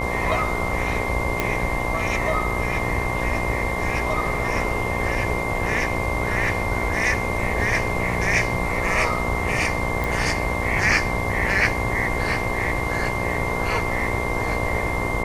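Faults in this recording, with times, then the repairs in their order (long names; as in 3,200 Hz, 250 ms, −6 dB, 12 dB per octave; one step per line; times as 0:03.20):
mains buzz 60 Hz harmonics 19 −28 dBFS
whistle 2,100 Hz −28 dBFS
0:01.40: click −7 dBFS
0:10.04: click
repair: click removal
notch filter 2,100 Hz, Q 30
hum removal 60 Hz, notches 19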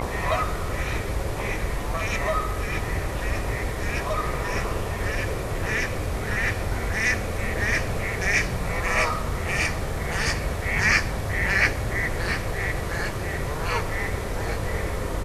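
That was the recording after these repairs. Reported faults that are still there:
none of them is left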